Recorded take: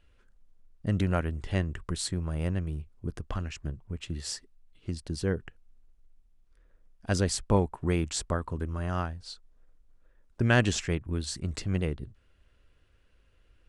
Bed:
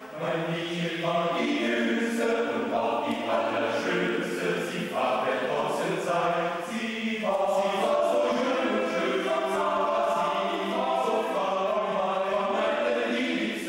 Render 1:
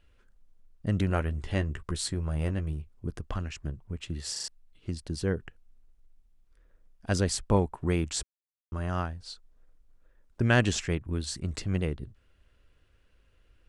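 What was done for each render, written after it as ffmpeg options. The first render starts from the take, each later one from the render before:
-filter_complex "[0:a]asettb=1/sr,asplit=3[s0][s1][s2];[s0]atrim=end=1.084[s3];[s1]atrim=start=1.08:end=2.73,asetpts=PTS-STARTPTS,afade=t=in:d=0.004:c=qsin,afade=t=out:st=1.646:d=0.004:c=qsin,asplit=2[s4][s5];[s5]adelay=14,volume=0.355[s6];[s4][s6]amix=inputs=2:normalize=0,atrim=end_sample=72765[s7];[s2]atrim=start=2.726[s8];[s3][s7]acrossfade=d=0.004:c1=hsin:c2=qsin[s9];[s9][s8]acrossfade=d=0.004:c1=qsin:c2=hsin,asplit=7[s10][s11][s12][s13][s14][s15][s16];[s10]atrim=end=4.362[s17];[s11]atrim=start=4.318:end=4.362[s18];[s12]atrim=start=4.318:end=4.362[s19];[s13]atrim=start=4.318:end=4.362[s20];[s14]atrim=start=4.478:end=8.23,asetpts=PTS-STARTPTS,afade=t=out:st=3.748:d=0.004:c=hsin[s21];[s15]atrim=start=8.23:end=8.72,asetpts=PTS-STARTPTS,volume=0[s22];[s16]atrim=start=8.72,asetpts=PTS-STARTPTS,afade=t=in:d=0.004:c=hsin[s23];[s17][s18]acrossfade=d=0.004:c1=hsin:c2=hsin[s24];[s24][s19]acrossfade=d=0.004:c1=hsin:c2=hsin[s25];[s25][s20]acrossfade=d=0.004:c1=hsin:c2=hsin[s26];[s21][s22][s23]concat=n=3:v=0:a=1[s27];[s26][s27]acrossfade=d=0.004:c1=hsin:c2=hsin"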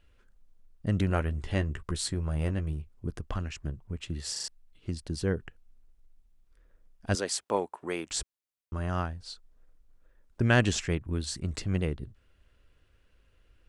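-filter_complex "[0:a]asettb=1/sr,asplit=3[s0][s1][s2];[s0]atrim=end=7.154[s3];[s1]atrim=start=7.15:end=8.11,asetpts=PTS-STARTPTS,afade=t=in:d=0.004:c=qsin,afade=t=out:st=0.956:d=0.004:c=qsin,highpass=410[s4];[s2]atrim=start=8.106[s5];[s3][s4]acrossfade=d=0.004:c1=hsin:c2=qsin[s6];[s6][s5]acrossfade=d=0.004:c1=qsin:c2=hsin"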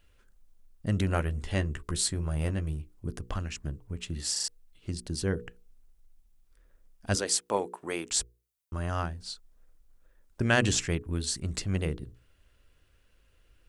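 -af "highshelf=f=5800:g=9,bandreject=f=60:t=h:w=6,bandreject=f=120:t=h:w=6,bandreject=f=180:t=h:w=6,bandreject=f=240:t=h:w=6,bandreject=f=300:t=h:w=6,bandreject=f=360:t=h:w=6,bandreject=f=420:t=h:w=6,bandreject=f=480:t=h:w=6"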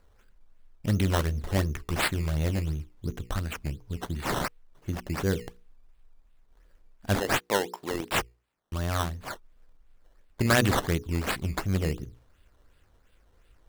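-filter_complex "[0:a]asplit=2[s0][s1];[s1]aeval=exprs='(mod(4.47*val(0)+1,2)-1)/4.47':c=same,volume=0.355[s2];[s0][s2]amix=inputs=2:normalize=0,acrusher=samples=13:mix=1:aa=0.000001:lfo=1:lforange=13:lforate=2.8"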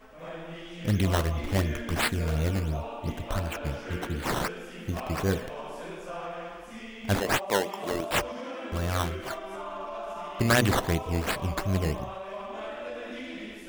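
-filter_complex "[1:a]volume=0.266[s0];[0:a][s0]amix=inputs=2:normalize=0"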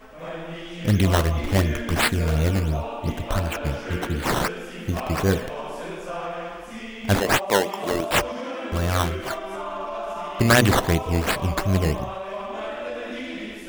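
-af "volume=2"

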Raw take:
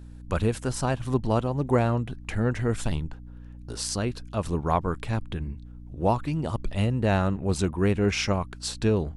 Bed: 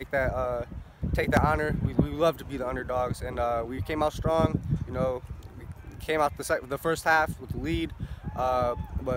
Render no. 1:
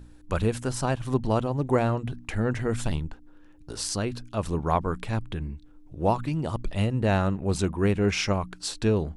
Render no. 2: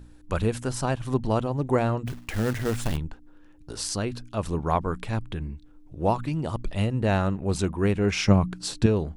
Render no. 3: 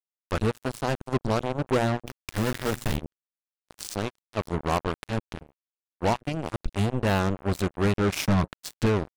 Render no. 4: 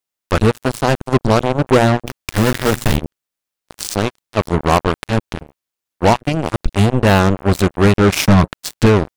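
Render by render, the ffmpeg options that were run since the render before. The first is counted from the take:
-af "bandreject=f=60:t=h:w=4,bandreject=f=120:t=h:w=4,bandreject=f=180:t=h:w=4,bandreject=f=240:t=h:w=4"
-filter_complex "[0:a]asplit=3[s0][s1][s2];[s0]afade=t=out:st=2.06:d=0.02[s3];[s1]acrusher=bits=3:mode=log:mix=0:aa=0.000001,afade=t=in:st=2.06:d=0.02,afade=t=out:st=2.96:d=0.02[s4];[s2]afade=t=in:st=2.96:d=0.02[s5];[s3][s4][s5]amix=inputs=3:normalize=0,asettb=1/sr,asplit=3[s6][s7][s8];[s6]atrim=end=8.284[s9];[s7]atrim=start=8.28:end=8.86,asetpts=PTS-STARTPTS,afade=t=in:d=0.004:c=qsin,afade=t=out:st=0.576:d=0.004:c=qsin,equalizer=f=150:t=o:w=2.2:g=11.5[s10];[s8]atrim=start=8.856[s11];[s9][s10]acrossfade=d=0.004:c1=hsin:c2=qsin[s12];[s12][s11]acrossfade=d=0.004:c1=qsin:c2=hsin"
-af "asoftclip=type=tanh:threshold=0.168,acrusher=bits=3:mix=0:aa=0.5"
-af "volume=3.98"

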